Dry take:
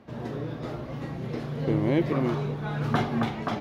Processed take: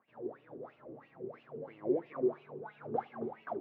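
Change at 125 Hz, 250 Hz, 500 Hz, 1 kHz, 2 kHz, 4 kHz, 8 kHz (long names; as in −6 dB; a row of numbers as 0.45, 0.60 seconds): −26.0 dB, −13.5 dB, −5.5 dB, −10.0 dB, −17.5 dB, below −25 dB, can't be measured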